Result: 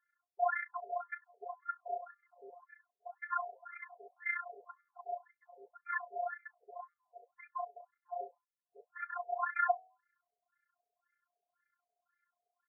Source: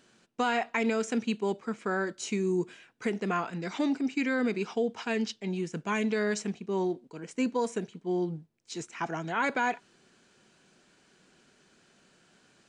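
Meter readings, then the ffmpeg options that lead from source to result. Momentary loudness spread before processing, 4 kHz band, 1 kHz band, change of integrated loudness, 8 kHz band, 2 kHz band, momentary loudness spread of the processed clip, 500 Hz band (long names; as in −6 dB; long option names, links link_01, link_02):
8 LU, below −40 dB, −4.0 dB, −8.5 dB, below −35 dB, −7.0 dB, 22 LU, −13.0 dB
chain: -af "bandreject=frequency=950:width=6.5,aecho=1:1:11|45:0.631|0.168,tremolo=f=30:d=0.788,aemphasis=mode=production:type=75kf,afftdn=noise_reduction=13:noise_floor=-44,afftfilt=real='hypot(re,im)*cos(PI*b)':imag='0':win_size=512:overlap=0.75,equalizer=frequency=220:width=7.6:gain=-9,bandreject=frequency=91.06:width_type=h:width=4,bandreject=frequency=182.12:width_type=h:width=4,bandreject=frequency=273.18:width_type=h:width=4,bandreject=frequency=364.24:width_type=h:width=4,bandreject=frequency=455.3:width_type=h:width=4,bandreject=frequency=546.36:width_type=h:width=4,bandreject=frequency=637.42:width_type=h:width=4,bandreject=frequency=728.48:width_type=h:width=4,bandreject=frequency=819.54:width_type=h:width=4,bandreject=frequency=910.6:width_type=h:width=4,bandreject=frequency=1001.66:width_type=h:width=4,bandreject=frequency=1092.72:width_type=h:width=4,bandreject=frequency=1183.78:width_type=h:width=4,afreqshift=18,afftfilt=real='re*between(b*sr/1024,580*pow(1700/580,0.5+0.5*sin(2*PI*1.9*pts/sr))/1.41,580*pow(1700/580,0.5+0.5*sin(2*PI*1.9*pts/sr))*1.41)':imag='im*between(b*sr/1024,580*pow(1700/580,0.5+0.5*sin(2*PI*1.9*pts/sr))/1.41,580*pow(1700/580,0.5+0.5*sin(2*PI*1.9*pts/sr))*1.41)':win_size=1024:overlap=0.75,volume=4.5dB"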